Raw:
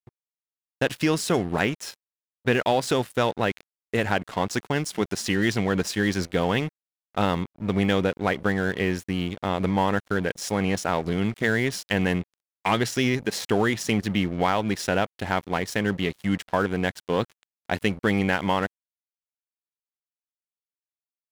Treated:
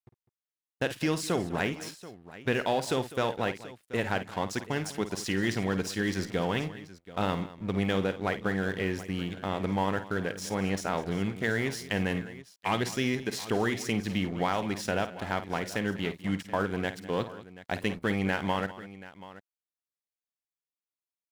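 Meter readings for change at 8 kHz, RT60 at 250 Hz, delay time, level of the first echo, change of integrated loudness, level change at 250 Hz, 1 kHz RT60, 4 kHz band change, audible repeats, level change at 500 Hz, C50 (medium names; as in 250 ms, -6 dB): -5.5 dB, no reverb, 52 ms, -12.0 dB, -5.5 dB, -5.5 dB, no reverb, -5.5 dB, 3, -5.5 dB, no reverb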